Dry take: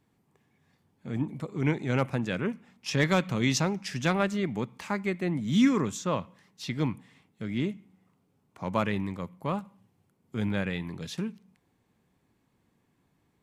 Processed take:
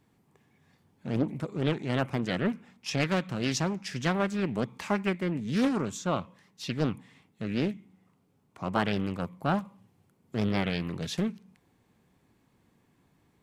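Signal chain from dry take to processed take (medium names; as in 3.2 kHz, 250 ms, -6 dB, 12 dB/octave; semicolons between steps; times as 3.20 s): gain riding within 4 dB 0.5 s; loudspeaker Doppler distortion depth 0.64 ms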